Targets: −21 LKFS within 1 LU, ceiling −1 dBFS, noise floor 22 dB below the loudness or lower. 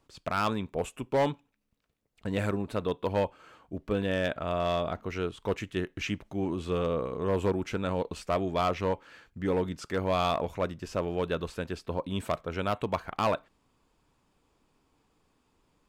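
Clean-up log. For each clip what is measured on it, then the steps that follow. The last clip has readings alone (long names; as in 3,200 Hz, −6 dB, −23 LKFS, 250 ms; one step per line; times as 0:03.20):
share of clipped samples 0.6%; peaks flattened at −20.0 dBFS; integrated loudness −31.5 LKFS; sample peak −20.0 dBFS; target loudness −21.0 LKFS
→ clipped peaks rebuilt −20 dBFS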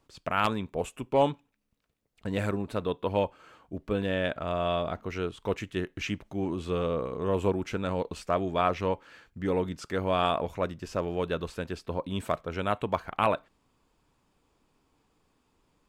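share of clipped samples 0.0%; integrated loudness −30.5 LKFS; sample peak −11.0 dBFS; target loudness −21.0 LKFS
→ level +9.5 dB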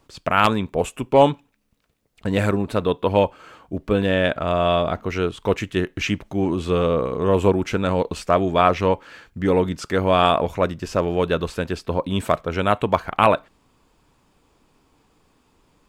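integrated loudness −21.0 LKFS; sample peak −1.5 dBFS; background noise floor −63 dBFS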